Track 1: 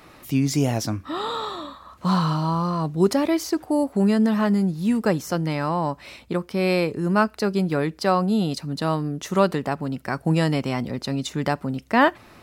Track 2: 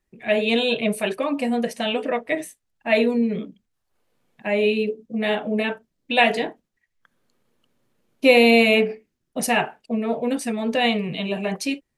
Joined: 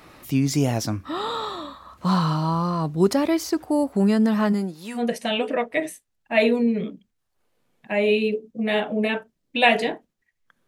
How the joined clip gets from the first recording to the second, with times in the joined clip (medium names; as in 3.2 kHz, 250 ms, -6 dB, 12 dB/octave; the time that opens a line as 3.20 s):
track 1
4.52–5.03 s: high-pass 180 Hz -> 860 Hz
4.98 s: go over to track 2 from 1.53 s, crossfade 0.10 s